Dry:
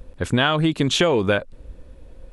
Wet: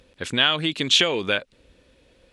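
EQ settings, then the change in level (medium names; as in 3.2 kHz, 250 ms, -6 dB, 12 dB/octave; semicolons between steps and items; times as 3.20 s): frequency weighting D; -6.0 dB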